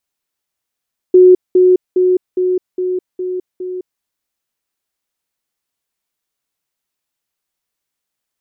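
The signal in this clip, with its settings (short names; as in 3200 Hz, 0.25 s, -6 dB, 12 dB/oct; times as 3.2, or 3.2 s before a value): level ladder 366 Hz -2.5 dBFS, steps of -3 dB, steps 7, 0.21 s 0.20 s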